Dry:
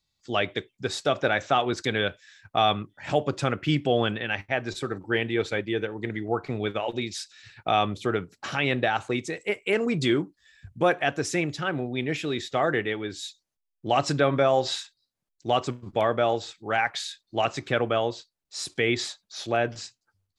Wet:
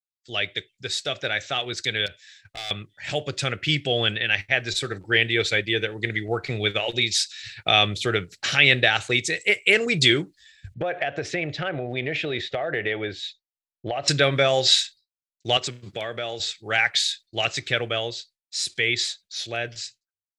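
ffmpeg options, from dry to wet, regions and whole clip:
-filter_complex "[0:a]asettb=1/sr,asplit=3[a][b][c];[a]atrim=end=2.064[d];[b]atrim=start=2.06:end=2.71,asetpts=PTS-STARTPTS,afade=t=in:d=0.004:c=qsin,afade=t=out:st=0.646:d=0.004:c=qsin,acompressor=threshold=-27dB:ratio=3:attack=3.2:release=140:knee=1:detection=peak,asoftclip=type=hard:threshold=-29dB[e];[c]atrim=start=2.706[f];[d][e]acrossfade=d=0.004:c1=hsin:c2=qsin[g];[g][f]acrossfade=d=0.004:c1=qsin:c2=hsin,asettb=1/sr,asplit=3[h][i][j];[h]atrim=end=10.744[k];[i]atrim=start=10.74:end=14.08,asetpts=PTS-STARTPTS,afade=t=in:d=0.004:c=qsin,afade=t=out:st=3.336:d=0.004:c=qsin,lowpass=2.4k,equalizer=f=650:t=o:w=0.97:g=10.5,acompressor=threshold=-24dB:ratio=8:attack=3.2:release=140:knee=1:detection=peak[l];[j]atrim=start=14.076[m];[k][l]acrossfade=d=0.004:c1=hsin:c2=qsin[n];[n][m]acrossfade=d=0.004:c1=qsin:c2=hsin,asettb=1/sr,asplit=3[o][p][q];[o]atrim=end=15.574[r];[p]atrim=start=15.57:end=16.4,asetpts=PTS-STARTPTS,afade=t=in:d=0.004:c=qsin,afade=t=out:st=0.826:d=0.004:c=qsin,acompressor=threshold=-32dB:ratio=2:attack=3.2:release=140:knee=1:detection=peak,highpass=110[s];[q]atrim=start=16.396[t];[r][s]acrossfade=d=0.004:c1=hsin:c2=qsin[u];[u][t]acrossfade=d=0.004:c1=qsin:c2=hsin,agate=range=-33dB:threshold=-50dB:ratio=3:detection=peak,dynaudnorm=f=610:g=13:m=11.5dB,equalizer=f=250:t=o:w=1:g=-9,equalizer=f=1k:t=o:w=1:g=-12,equalizer=f=2k:t=o:w=1:g=6,equalizer=f=4k:t=o:w=1:g=7,equalizer=f=8k:t=o:w=1:g=5,volume=-2dB"

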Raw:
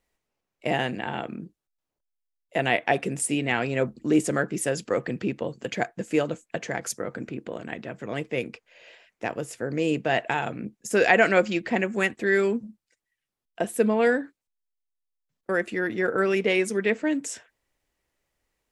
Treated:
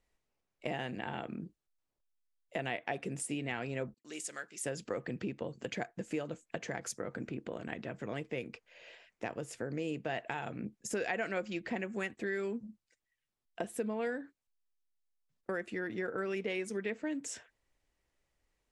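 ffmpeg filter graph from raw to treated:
-filter_complex "[0:a]asettb=1/sr,asplit=3[a][b][c];[a]atrim=end=3.944[d];[b]atrim=start=3.94:end=4.64,asetpts=PTS-STARTPTS,afade=t=in:d=0.004:c=qsin,afade=t=out:st=0.696:d=0.004:c=qsin,agate=range=-33dB:threshold=-42dB:ratio=3:release=100:detection=peak,bandpass=f=7.4k:t=q:w=0.54[e];[c]atrim=start=4.636[f];[d][e]acrossfade=d=0.004:c1=hsin:c2=qsin[g];[g][f]acrossfade=d=0.004:c1=qsin:c2=hsin,lowshelf=f=87:g=6,acompressor=threshold=-32dB:ratio=3,lowpass=10k,volume=-4dB"

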